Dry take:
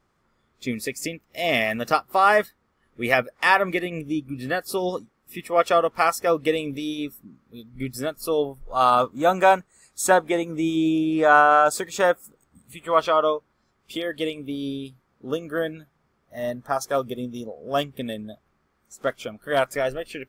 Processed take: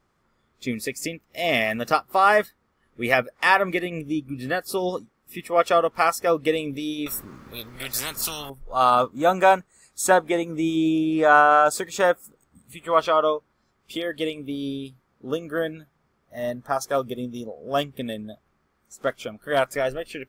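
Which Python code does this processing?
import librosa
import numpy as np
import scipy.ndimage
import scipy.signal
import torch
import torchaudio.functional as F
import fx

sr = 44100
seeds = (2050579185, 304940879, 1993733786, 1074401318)

y = fx.spectral_comp(x, sr, ratio=10.0, at=(7.06, 8.5))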